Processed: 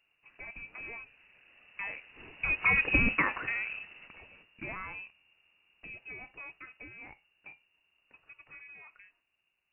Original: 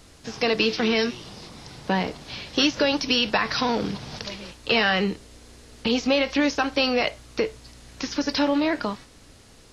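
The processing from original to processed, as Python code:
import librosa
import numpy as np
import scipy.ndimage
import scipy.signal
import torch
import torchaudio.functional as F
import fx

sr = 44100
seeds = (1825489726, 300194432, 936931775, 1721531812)

y = fx.doppler_pass(x, sr, speed_mps=19, closest_m=3.6, pass_at_s=2.91)
y = fx.freq_invert(y, sr, carrier_hz=2800)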